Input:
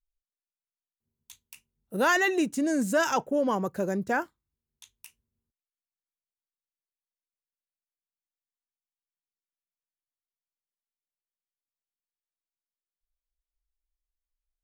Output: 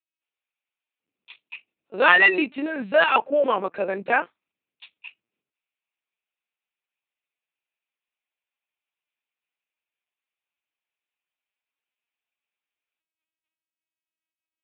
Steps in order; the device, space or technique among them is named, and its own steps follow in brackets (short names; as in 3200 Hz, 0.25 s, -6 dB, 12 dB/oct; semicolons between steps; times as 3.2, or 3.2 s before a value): talking toy (LPC vocoder at 8 kHz pitch kept; HPF 380 Hz 12 dB/oct; bell 2500 Hz +11.5 dB 0.4 oct); gain +7 dB